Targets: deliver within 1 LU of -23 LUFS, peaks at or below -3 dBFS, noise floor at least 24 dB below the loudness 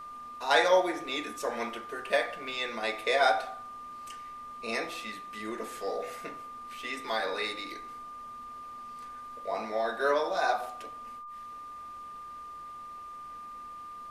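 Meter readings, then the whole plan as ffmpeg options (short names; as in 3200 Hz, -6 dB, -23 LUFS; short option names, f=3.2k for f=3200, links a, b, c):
steady tone 1200 Hz; tone level -41 dBFS; loudness -31.5 LUFS; peak -9.0 dBFS; loudness target -23.0 LUFS
-> -af "bandreject=f=1.2k:w=30"
-af "volume=8.5dB,alimiter=limit=-3dB:level=0:latency=1"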